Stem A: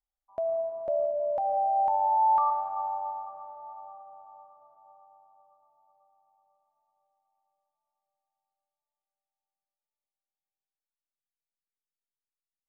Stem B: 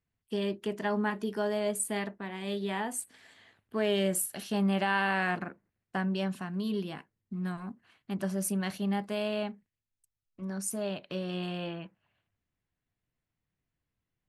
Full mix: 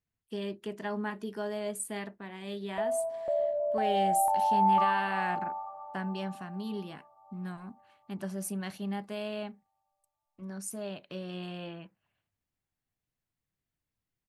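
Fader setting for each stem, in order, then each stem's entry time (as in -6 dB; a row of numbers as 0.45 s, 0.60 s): -1.5 dB, -4.5 dB; 2.40 s, 0.00 s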